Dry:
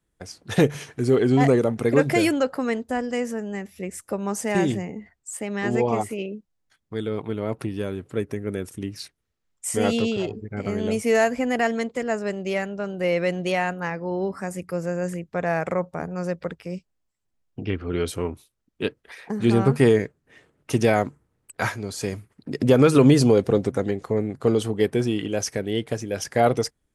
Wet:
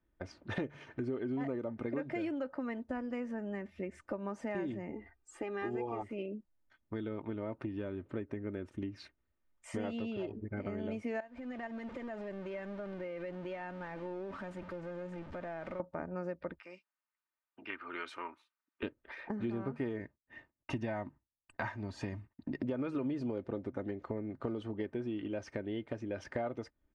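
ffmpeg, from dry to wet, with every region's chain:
-filter_complex "[0:a]asettb=1/sr,asplit=3[s0][s1][s2];[s0]atrim=end=4.924[s3];[s1]atrim=start=4.92:end=6.02,asetpts=PTS-STARTPTS,afade=t=in:d=0.004:c=qsin,afade=t=out:st=1.096:d=0.004:c=qsin,bandreject=f=2100:w=26,aecho=1:1:2.5:0.65,atrim=end_sample=48510[s4];[s2]atrim=start=6.016[s5];[s3][s4]acrossfade=d=0.004:c1=hsin:c2=qsin[s6];[s6][s5]acrossfade=d=0.004:c1=qsin:c2=hsin,asettb=1/sr,asplit=3[s7][s8][s9];[s7]atrim=end=11.204[s10];[s8]atrim=start=11.2:end=15.8,asetpts=PTS-STARTPTS,afade=t=in:d=0.004:c=qsin,afade=t=out:st=4.596:d=0.004:c=qsin,aeval=exprs='val(0)+0.5*0.0447*sgn(val(0))':c=same,agate=range=0.282:threshold=0.126:ratio=16:release=100:detection=peak,acompressor=threshold=0.0178:ratio=5:attack=3.2:release=140:knee=1:detection=peak[s11];[s9]atrim=start=15.796[s12];[s10][s11]acrossfade=d=0.004:c1=hsin:c2=qsin[s13];[s13][s12]acrossfade=d=0.004:c1=qsin:c2=hsin,asettb=1/sr,asplit=3[s14][s15][s16];[s14]atrim=end=16.594[s17];[s15]atrim=start=16.59:end=18.83,asetpts=PTS-STARTPTS,afade=t=in:d=0.004:c=qsin,afade=t=out:st=2.236:d=0.004:c=qsin,highpass=390,lowshelf=f=790:t=q:w=1.5:g=-11,bandreject=f=3200:w=16[s18];[s16]atrim=start=18.826[s19];[s17][s18]acrossfade=d=0.004:c1=hsin:c2=qsin[s20];[s20][s19]acrossfade=d=0.004:c1=qsin:c2=hsin,asettb=1/sr,asplit=3[s21][s22][s23];[s21]atrim=end=20.014[s24];[s22]atrim=start=20.01:end=22.61,asetpts=PTS-STARTPTS,afade=t=in:d=0.004:c=qsin,afade=t=out:st=2.596:d=0.004:c=qsin,agate=range=0.0224:threshold=0.00224:ratio=3:release=100:detection=peak,aecho=1:1:1.1:0.47,atrim=end_sample=114660[s25];[s23]atrim=start=22.606[s26];[s24][s25]acrossfade=d=0.004:c1=hsin:c2=qsin[s27];[s27][s26]acrossfade=d=0.004:c1=qsin:c2=hsin,lowpass=2200,aecho=1:1:3.3:0.48,acompressor=threshold=0.0224:ratio=5,volume=0.708"

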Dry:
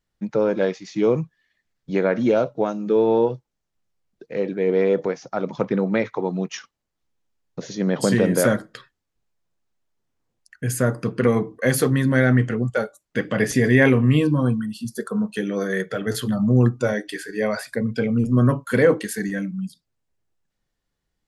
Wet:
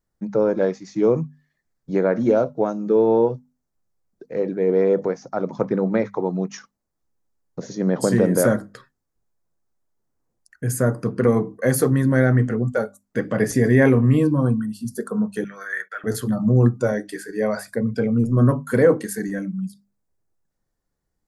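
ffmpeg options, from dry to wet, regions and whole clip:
-filter_complex "[0:a]asettb=1/sr,asplit=3[s0][s1][s2];[s0]atrim=end=15.444[s3];[s1]atrim=start=15.44:end=16.04,asetpts=PTS-STARTPTS,afade=t=in:d=0.004:c=qsin,afade=t=out:st=0.596:d=0.004:c=qsin,agate=range=0.126:threshold=0.0126:ratio=16:release=100:detection=peak,highpass=f=1600:t=q:w=2.5,equalizer=f=7300:t=o:w=2.4:g=-8[s4];[s2]atrim=start=16.036[s5];[s3][s4]acrossfade=d=0.004:c1=hsin:c2=qsin[s6];[s6][s5]acrossfade=d=0.004:c1=qsin:c2=hsin,equalizer=f=3000:w=1.1:g=-13,bandreject=f=50:t=h:w=6,bandreject=f=100:t=h:w=6,bandreject=f=150:t=h:w=6,bandreject=f=200:t=h:w=6,bandreject=f=250:t=h:w=6,volume=1.19"

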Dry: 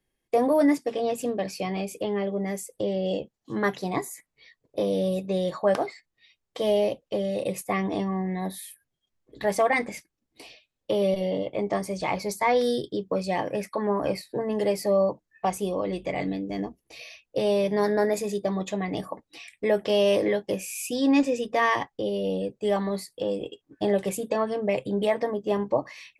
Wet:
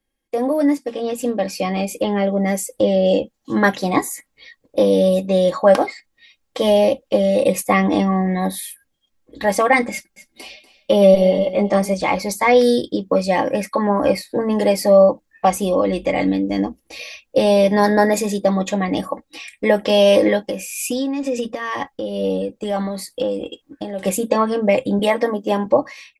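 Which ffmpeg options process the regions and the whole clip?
-filter_complex "[0:a]asettb=1/sr,asplit=3[s0][s1][s2];[s0]atrim=end=9.924[s3];[s1]atrim=start=9.92:end=11.94,asetpts=PTS-STARTPTS,afade=t=in:d=0.004:c=qsin,afade=t=out:st=2.016:d=0.004:c=qsin,aecho=1:1:5.1:0.67,atrim=end_sample=89082,aecho=1:1:241:0.168,atrim=end_sample=89082[s4];[s2]atrim=start=11.936[s5];[s3][s4]acrossfade=d=0.004:c1=hsin:c2=qsin[s6];[s6][s5]acrossfade=d=0.004:c1=qsin:c2=hsin,asettb=1/sr,asplit=3[s7][s8][s9];[s7]atrim=end=20.464[s10];[s8]atrim=start=20.46:end=24.03,asetpts=PTS-STARTPTS,afade=t=in:d=0.004:c=qsin,afade=t=out:st=3.566:d=0.004:c=qsin,acompressor=threshold=0.0398:ratio=10:attack=3.2:release=140:knee=1:detection=peak,tremolo=f=2.2:d=0.42[s11];[s9]atrim=start=24.026[s12];[s10][s11]acrossfade=d=0.004:c1=hsin:c2=qsin[s13];[s13][s12]acrossfade=d=0.004:c1=qsin:c2=hsin,asettb=1/sr,asplit=3[s14][s15][s16];[s14]atrim=end=24.994[s17];[s15]atrim=start=24.99:end=25.66,asetpts=PTS-STARTPTS,afade=t=in:d=0.004:c=qsin,afade=t=out:st=0.666:d=0.004:c=qsin,highpass=180,highshelf=f=8800:g=4.5[s18];[s16]atrim=start=25.656[s19];[s17][s18]acrossfade=d=0.004:c1=hsin:c2=qsin[s20];[s20][s19]acrossfade=d=0.004:c1=qsin:c2=hsin,aecho=1:1:3.7:0.51,dynaudnorm=f=830:g=3:m=3.76"

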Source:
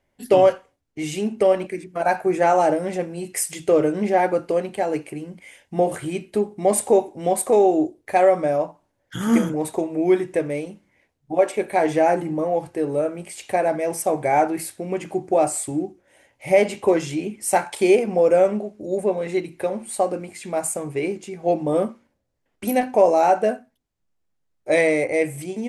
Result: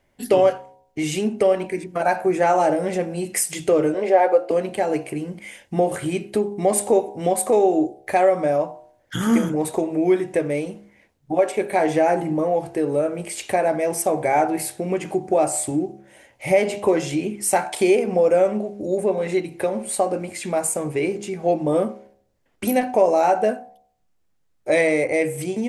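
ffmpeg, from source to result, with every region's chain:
-filter_complex "[0:a]asettb=1/sr,asplit=3[s0][s1][s2];[s0]atrim=end=3.944[s3];[s1]atrim=start=3.94:end=4.51,asetpts=PTS-STARTPTS,afade=t=in:d=0.004:c=qsin,afade=t=out:st=0.566:d=0.004:c=qsin,highpass=f=500:t=q:w=2.2,highshelf=f=7500:g=-10,bandreject=f=6000:w=17[s4];[s2]atrim=start=4.506[s5];[s3][s4]acrossfade=d=0.004:c1=hsin:c2=qsin[s6];[s6][s5]acrossfade=d=0.004:c1=qsin:c2=hsin,bandreject=f=67.81:t=h:w=4,bandreject=f=135.62:t=h:w=4,bandreject=f=203.43:t=h:w=4,bandreject=f=271.24:t=h:w=4,bandreject=f=339.05:t=h:w=4,bandreject=f=406.86:t=h:w=4,bandreject=f=474.67:t=h:w=4,bandreject=f=542.48:t=h:w=4,bandreject=f=610.29:t=h:w=4,bandreject=f=678.1:t=h:w=4,bandreject=f=745.91:t=h:w=4,bandreject=f=813.72:t=h:w=4,bandreject=f=881.53:t=h:w=4,bandreject=f=949.34:t=h:w=4,bandreject=f=1017.15:t=h:w=4,acompressor=threshold=0.0282:ratio=1.5,volume=2"

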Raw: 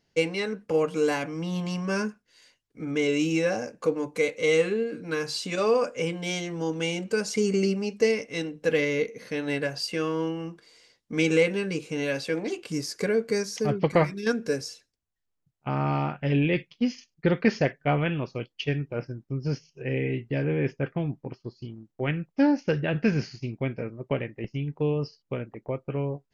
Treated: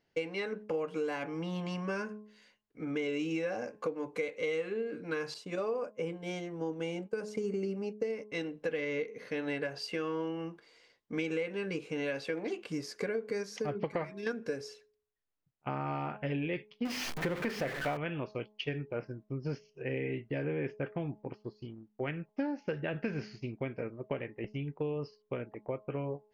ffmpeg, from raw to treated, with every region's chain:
-filter_complex "[0:a]asettb=1/sr,asplit=3[s0][s1][s2];[s0]atrim=end=5.344[s3];[s1]atrim=start=5.34:end=8.32,asetpts=PTS-STARTPTS,afade=t=in:d=0.004:c=qsin,afade=t=out:st=2.976:d=0.004:c=qsin,agate=range=0.0224:threshold=0.0282:ratio=3:release=100:detection=peak,equalizer=f=3000:t=o:w=2.7:g=-8[s4];[s2]atrim=start=8.316[s5];[s3][s4]acrossfade=d=0.004:c1=hsin:c2=qsin[s6];[s6][s5]acrossfade=d=0.004:c1=qsin:c2=hsin,asettb=1/sr,asplit=3[s7][s8][s9];[s7]atrim=end=16.854[s10];[s8]atrim=start=16.85:end=17.97,asetpts=PTS-STARTPTS,afade=t=in:d=0.004:c=qsin,afade=t=out:st=1.116:d=0.004:c=qsin,aeval=exprs='val(0)+0.5*0.0708*sgn(val(0))':c=same,bandreject=f=50:t=h:w=6,bandreject=f=100:t=h:w=6,bandreject=f=150:t=h:w=6,bandreject=f=200:t=h:w=6,bandreject=f=250:t=h:w=6,bandreject=f=300:t=h:w=6,bandreject=f=350:t=h:w=6,bandreject=f=400:t=h:w=6,bandreject=f=450:t=h:w=6,bandreject=f=500:t=h:w=6[s11];[s9]atrim=start=17.966[s12];[s10][s11]acrossfade=d=0.004:c1=hsin:c2=qsin[s13];[s13][s12]acrossfade=d=0.004:c1=qsin:c2=hsin,bass=f=250:g=-6,treble=f=4000:g=-11,bandreject=f=211.7:t=h:w=4,bandreject=f=423.4:t=h:w=4,bandreject=f=635.1:t=h:w=4,bandreject=f=846.8:t=h:w=4,bandreject=f=1058.5:t=h:w=4,acompressor=threshold=0.0355:ratio=6,volume=0.794"

